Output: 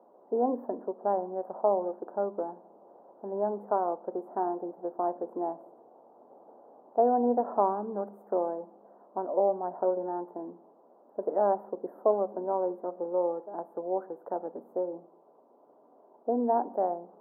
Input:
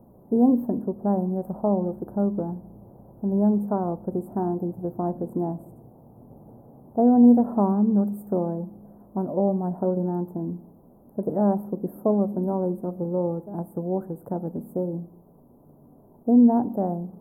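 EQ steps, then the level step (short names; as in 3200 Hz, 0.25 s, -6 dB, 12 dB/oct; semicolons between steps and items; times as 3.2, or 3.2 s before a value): Bessel high-pass 620 Hz, order 4; air absorption 280 m; +4.5 dB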